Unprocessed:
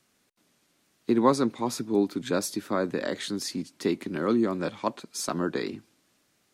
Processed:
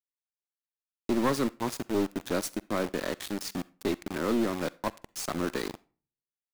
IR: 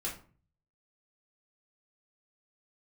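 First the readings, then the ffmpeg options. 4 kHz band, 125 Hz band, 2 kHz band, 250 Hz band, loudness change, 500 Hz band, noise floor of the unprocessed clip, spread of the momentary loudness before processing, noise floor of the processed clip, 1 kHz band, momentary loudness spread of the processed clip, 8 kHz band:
-2.5 dB, -2.5 dB, -0.5 dB, -3.5 dB, -3.5 dB, -3.5 dB, -70 dBFS, 10 LU, under -85 dBFS, -4.0 dB, 9 LU, -3.0 dB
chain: -filter_complex "[0:a]aeval=exprs='val(0)*gte(abs(val(0)),0.0299)':c=same,aeval=exprs='(tanh(10*val(0)+0.3)-tanh(0.3))/10':c=same,asplit=2[a][b];[1:a]atrim=start_sample=2205,lowshelf=f=460:g=-10.5,adelay=44[c];[b][c]afir=irnorm=-1:irlink=0,volume=-21dB[d];[a][d]amix=inputs=2:normalize=0"

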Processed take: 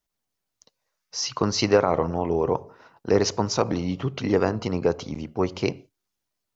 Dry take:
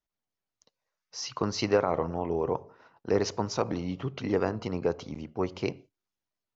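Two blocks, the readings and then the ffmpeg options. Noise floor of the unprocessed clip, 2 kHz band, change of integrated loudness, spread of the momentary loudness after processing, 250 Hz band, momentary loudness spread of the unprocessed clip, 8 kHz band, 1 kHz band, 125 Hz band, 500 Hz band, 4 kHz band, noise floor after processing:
under -85 dBFS, +5.5 dB, +6.0 dB, 10 LU, +6.0 dB, 11 LU, n/a, +5.5 dB, +6.5 dB, +5.5 dB, +8.0 dB, -82 dBFS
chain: -af "bass=f=250:g=1,treble=f=4k:g=4,volume=5.5dB"

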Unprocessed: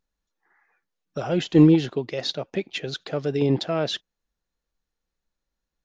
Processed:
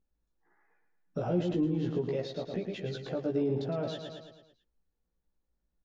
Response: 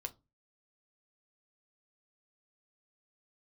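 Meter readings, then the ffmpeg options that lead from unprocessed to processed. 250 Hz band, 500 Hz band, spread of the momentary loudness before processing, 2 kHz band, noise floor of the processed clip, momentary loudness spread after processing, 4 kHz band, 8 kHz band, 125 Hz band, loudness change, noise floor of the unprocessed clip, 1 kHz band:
-11.0 dB, -7.0 dB, 15 LU, -13.5 dB, -82 dBFS, 11 LU, -15.5 dB, n/a, -9.5 dB, -10.0 dB, -85 dBFS, -9.0 dB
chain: -filter_complex "[0:a]acompressor=threshold=-19dB:ratio=6,asplit=2[a][b];[b]aecho=0:1:110|220|330|440|550|660:0.422|0.211|0.105|0.0527|0.0264|0.0132[c];[a][c]amix=inputs=2:normalize=0,alimiter=limit=-22dB:level=0:latency=1:release=172,tiltshelf=f=970:g=7.5,asplit=2[d][e];[e]adelay=17,volume=-2dB[f];[d][f]amix=inputs=2:normalize=0,volume=-7dB"

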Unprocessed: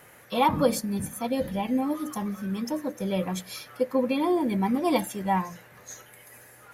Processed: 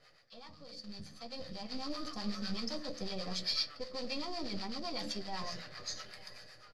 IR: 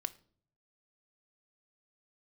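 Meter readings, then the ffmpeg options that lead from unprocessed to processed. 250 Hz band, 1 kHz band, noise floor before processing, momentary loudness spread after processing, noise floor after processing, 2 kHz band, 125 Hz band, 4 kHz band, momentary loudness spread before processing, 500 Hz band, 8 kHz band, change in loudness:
-16.5 dB, -17.5 dB, -53 dBFS, 15 LU, -59 dBFS, -9.5 dB, -15.0 dB, +2.0 dB, 14 LU, -17.0 dB, -10.5 dB, -12.5 dB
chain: -filter_complex "[0:a]aeval=exprs='if(lt(val(0),0),0.447*val(0),val(0))':c=same,bandreject=f=890:w=12,bandreject=f=73.2:t=h:w=4,bandreject=f=146.4:t=h:w=4,bandreject=f=219.6:t=h:w=4,bandreject=f=292.8:t=h:w=4,bandreject=f=366:t=h:w=4,bandreject=f=439.2:t=h:w=4,bandreject=f=512.4:t=h:w=4,bandreject=f=585.6:t=h:w=4,areverse,acompressor=threshold=-35dB:ratio=12,areverse,alimiter=level_in=9.5dB:limit=-24dB:level=0:latency=1:release=132,volume=-9.5dB,dynaudnorm=f=600:g=5:m=14dB,acrusher=bits=3:mode=log:mix=0:aa=0.000001,lowpass=f=4.7k:t=q:w=15,acrossover=split=640[a][b];[a]aeval=exprs='val(0)*(1-0.7/2+0.7/2*cos(2*PI*7.9*n/s))':c=same[c];[b]aeval=exprs='val(0)*(1-0.7/2-0.7/2*cos(2*PI*7.9*n/s))':c=same[d];[c][d]amix=inputs=2:normalize=0,asplit=2[e][f];[f]adelay=13,volume=-11dB[g];[e][g]amix=inputs=2:normalize=0,aecho=1:1:885:0.0708[h];[1:a]atrim=start_sample=2205,asetrate=74970,aresample=44100[i];[h][i]afir=irnorm=-1:irlink=0,volume=-2.5dB"

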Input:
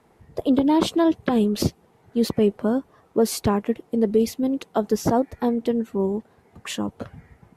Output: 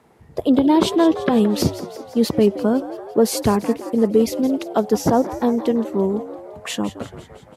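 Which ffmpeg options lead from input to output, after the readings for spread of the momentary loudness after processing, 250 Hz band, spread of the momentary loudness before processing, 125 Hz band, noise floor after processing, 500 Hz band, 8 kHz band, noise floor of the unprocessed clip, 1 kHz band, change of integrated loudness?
12 LU, +3.5 dB, 10 LU, +3.0 dB, -46 dBFS, +4.0 dB, +4.0 dB, -59 dBFS, +4.0 dB, +3.5 dB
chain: -filter_complex "[0:a]highpass=41,bandreject=f=50:t=h:w=6,bandreject=f=100:t=h:w=6,asplit=8[a][b][c][d][e][f][g][h];[b]adelay=170,afreqshift=78,volume=-14dB[i];[c]adelay=340,afreqshift=156,volume=-18.3dB[j];[d]adelay=510,afreqshift=234,volume=-22.6dB[k];[e]adelay=680,afreqshift=312,volume=-26.9dB[l];[f]adelay=850,afreqshift=390,volume=-31.2dB[m];[g]adelay=1020,afreqshift=468,volume=-35.5dB[n];[h]adelay=1190,afreqshift=546,volume=-39.8dB[o];[a][i][j][k][l][m][n][o]amix=inputs=8:normalize=0,volume=3.5dB"

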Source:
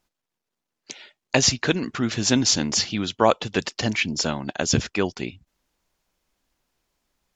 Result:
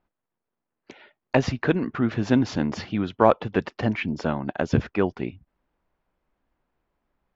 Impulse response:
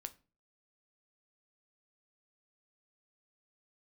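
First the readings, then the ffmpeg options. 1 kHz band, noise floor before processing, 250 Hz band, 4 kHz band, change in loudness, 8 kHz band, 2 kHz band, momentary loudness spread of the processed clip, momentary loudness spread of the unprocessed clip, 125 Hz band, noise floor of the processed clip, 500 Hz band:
+0.5 dB, -84 dBFS, +1.0 dB, -15.5 dB, -2.5 dB, under -20 dB, -4.0 dB, 8 LU, 15 LU, +1.0 dB, -84 dBFS, +1.0 dB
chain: -filter_complex "[0:a]lowpass=1.6k,asplit=2[a][b];[b]aeval=exprs='clip(val(0),-1,0.126)':c=same,volume=-10.5dB[c];[a][c]amix=inputs=2:normalize=0,volume=-1dB"

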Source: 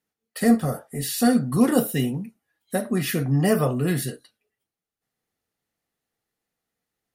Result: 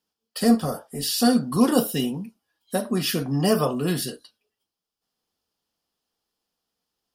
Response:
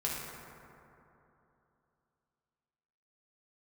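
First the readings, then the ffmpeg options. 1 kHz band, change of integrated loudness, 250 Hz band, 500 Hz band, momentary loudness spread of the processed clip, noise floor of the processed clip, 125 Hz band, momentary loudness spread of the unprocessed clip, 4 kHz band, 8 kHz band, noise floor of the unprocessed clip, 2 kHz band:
+1.5 dB, -0.5 dB, -0.5 dB, 0.0 dB, 10 LU, under -85 dBFS, -4.0 dB, 10 LU, +6.0 dB, +0.5 dB, under -85 dBFS, -3.0 dB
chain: -af "equalizer=f=125:t=o:w=0.33:g=-11,equalizer=f=1k:t=o:w=0.33:g=6,equalizer=f=2k:t=o:w=0.33:g=-9,equalizer=f=3.15k:t=o:w=0.33:g=7,equalizer=f=5k:t=o:w=0.33:g=11"

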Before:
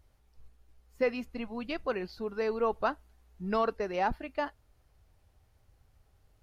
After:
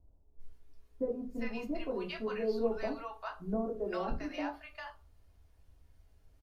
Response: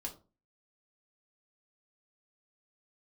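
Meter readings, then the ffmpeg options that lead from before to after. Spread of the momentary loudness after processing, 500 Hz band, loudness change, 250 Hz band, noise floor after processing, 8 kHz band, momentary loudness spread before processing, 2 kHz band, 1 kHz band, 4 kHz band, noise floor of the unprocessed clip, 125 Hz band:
9 LU, -3.5 dB, -4.0 dB, 0.0 dB, -65 dBFS, n/a, 9 LU, -6.0 dB, -8.5 dB, -3.0 dB, -68 dBFS, -1.5 dB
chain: -filter_complex "[0:a]acrossover=split=400[a][b];[b]acompressor=threshold=-31dB:ratio=6[c];[a][c]amix=inputs=2:normalize=0,acrossover=split=830[d][e];[e]adelay=400[f];[d][f]amix=inputs=2:normalize=0[g];[1:a]atrim=start_sample=2205[h];[g][h]afir=irnorm=-1:irlink=0"

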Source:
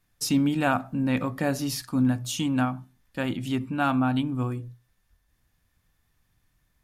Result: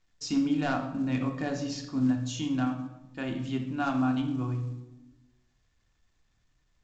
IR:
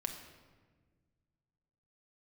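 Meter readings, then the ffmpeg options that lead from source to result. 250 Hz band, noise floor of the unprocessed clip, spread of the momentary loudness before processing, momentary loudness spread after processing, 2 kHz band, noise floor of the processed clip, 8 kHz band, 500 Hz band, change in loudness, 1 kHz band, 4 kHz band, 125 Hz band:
-3.0 dB, -71 dBFS, 8 LU, 9 LU, -6.0 dB, -72 dBFS, -8.0 dB, -5.0 dB, -4.0 dB, -5.5 dB, -5.5 dB, -4.0 dB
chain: -filter_complex "[0:a]aeval=exprs='0.188*(abs(mod(val(0)/0.188+3,4)-2)-1)':c=same[a];[1:a]atrim=start_sample=2205,asetrate=79380,aresample=44100[b];[a][b]afir=irnorm=-1:irlink=0,volume=-1dB" -ar 16000 -c:a pcm_mulaw

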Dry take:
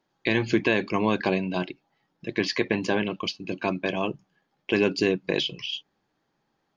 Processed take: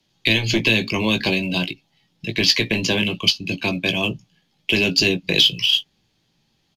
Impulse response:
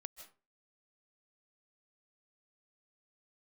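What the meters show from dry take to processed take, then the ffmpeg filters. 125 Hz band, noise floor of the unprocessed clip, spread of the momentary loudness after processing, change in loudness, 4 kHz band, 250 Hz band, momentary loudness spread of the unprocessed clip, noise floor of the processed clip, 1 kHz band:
+7.5 dB, -75 dBFS, 11 LU, +8.0 dB, +14.5 dB, +3.0 dB, 11 LU, -67 dBFS, -1.5 dB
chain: -filter_complex "[0:a]highshelf=f=2.1k:t=q:w=1.5:g=11.5,acrossover=split=370|3000[a][b][c];[b]acompressor=threshold=-21dB:ratio=6[d];[a][d][c]amix=inputs=3:normalize=0,acrossover=split=180|810|2000[e][f][g][h];[e]aeval=exprs='0.0562*sin(PI/2*2.82*val(0)/0.0562)':c=same[i];[h]acrusher=bits=5:mode=log:mix=0:aa=0.000001[j];[i][f][g][j]amix=inputs=4:normalize=0,asplit=2[k][l];[l]adelay=18,volume=-8dB[m];[k][m]amix=inputs=2:normalize=0,aresample=32000,aresample=44100,volume=1dB"

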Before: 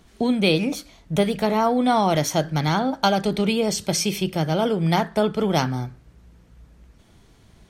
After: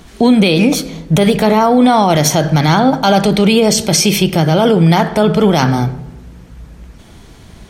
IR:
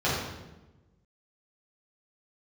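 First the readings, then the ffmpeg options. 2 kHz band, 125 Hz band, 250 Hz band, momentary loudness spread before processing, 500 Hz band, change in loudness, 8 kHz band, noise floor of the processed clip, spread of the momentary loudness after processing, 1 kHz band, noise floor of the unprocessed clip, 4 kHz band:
+9.5 dB, +11.5 dB, +11.0 dB, 6 LU, +9.5 dB, +10.0 dB, +12.0 dB, -39 dBFS, 5 LU, +9.0 dB, -54 dBFS, +10.0 dB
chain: -filter_complex "[0:a]asplit=2[a][b];[1:a]atrim=start_sample=2205[c];[b][c]afir=irnorm=-1:irlink=0,volume=-30.5dB[d];[a][d]amix=inputs=2:normalize=0,alimiter=level_in=15.5dB:limit=-1dB:release=50:level=0:latency=1,volume=-1dB"

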